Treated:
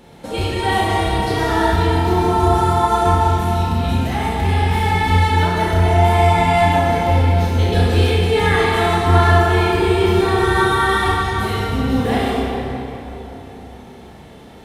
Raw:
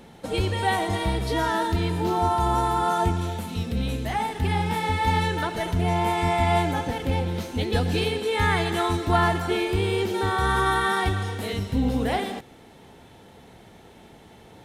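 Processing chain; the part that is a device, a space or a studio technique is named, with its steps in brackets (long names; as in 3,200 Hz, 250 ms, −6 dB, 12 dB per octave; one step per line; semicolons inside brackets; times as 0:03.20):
tunnel (flutter between parallel walls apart 5.7 metres, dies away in 0.3 s; convolution reverb RT60 3.6 s, pre-delay 19 ms, DRR −4.5 dB)
level +1 dB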